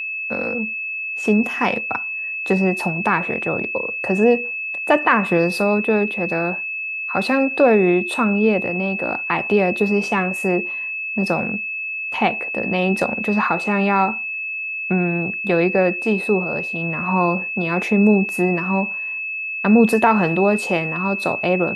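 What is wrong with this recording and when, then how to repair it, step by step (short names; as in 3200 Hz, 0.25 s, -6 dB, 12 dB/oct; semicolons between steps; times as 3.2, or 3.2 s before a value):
tone 2600 Hz -24 dBFS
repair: notch 2600 Hz, Q 30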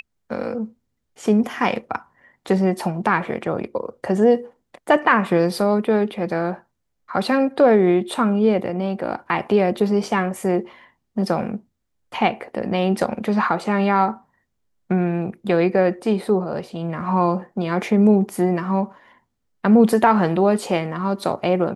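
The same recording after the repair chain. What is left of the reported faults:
none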